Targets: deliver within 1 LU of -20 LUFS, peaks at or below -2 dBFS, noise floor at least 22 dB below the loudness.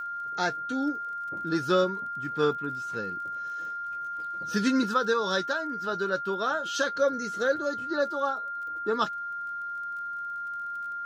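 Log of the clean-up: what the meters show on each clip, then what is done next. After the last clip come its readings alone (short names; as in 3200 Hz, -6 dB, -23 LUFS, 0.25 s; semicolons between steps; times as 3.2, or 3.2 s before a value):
ticks 34/s; steady tone 1400 Hz; tone level -32 dBFS; loudness -29.5 LUFS; peak -13.0 dBFS; loudness target -20.0 LUFS
-> de-click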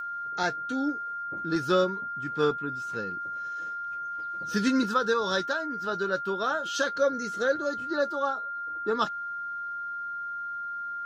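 ticks 0.27/s; steady tone 1400 Hz; tone level -32 dBFS
-> notch 1400 Hz, Q 30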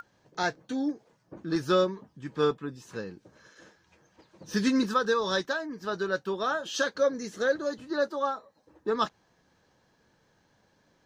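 steady tone none; loudness -29.5 LUFS; peak -13.0 dBFS; loudness target -20.0 LUFS
-> gain +9.5 dB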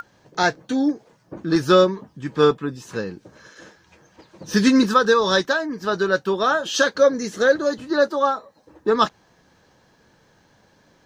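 loudness -20.0 LUFS; peak -3.5 dBFS; noise floor -59 dBFS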